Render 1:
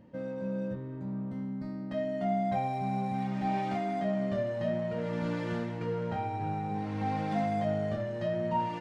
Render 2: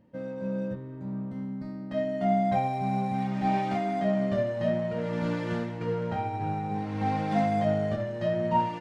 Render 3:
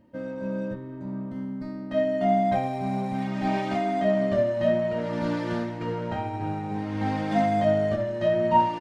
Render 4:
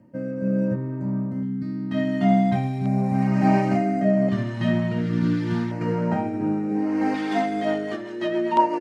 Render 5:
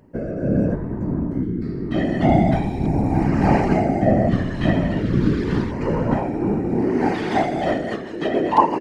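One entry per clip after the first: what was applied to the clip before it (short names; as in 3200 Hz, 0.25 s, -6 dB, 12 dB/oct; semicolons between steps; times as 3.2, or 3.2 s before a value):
upward expander 1.5:1, over -49 dBFS; gain +6 dB
comb 3.2 ms, depth 42%; gain +2.5 dB
high-pass sweep 130 Hz -> 380 Hz, 5.66–7.33; rotary speaker horn 0.8 Hz, later 8 Hz, at 7.31; LFO notch square 0.35 Hz 570–3500 Hz; gain +5.5 dB
whisperiser; gain +3 dB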